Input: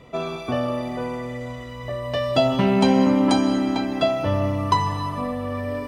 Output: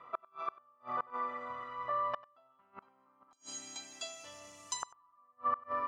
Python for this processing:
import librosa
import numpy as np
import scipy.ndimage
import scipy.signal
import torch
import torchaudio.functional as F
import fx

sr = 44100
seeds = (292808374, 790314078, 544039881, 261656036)

y = fx.octave_divider(x, sr, octaves=1, level_db=-6.0)
y = fx.bandpass_q(y, sr, hz=fx.steps((0.0, 1200.0), (3.33, 7100.0), (4.83, 1200.0)), q=7.9)
y = fx.gate_flip(y, sr, shuts_db=-32.0, range_db=-39)
y = y + 10.0 ** (-21.0 / 20.0) * np.pad(y, (int(95 * sr / 1000.0), 0))[:len(y)]
y = F.gain(torch.from_numpy(y), 9.5).numpy()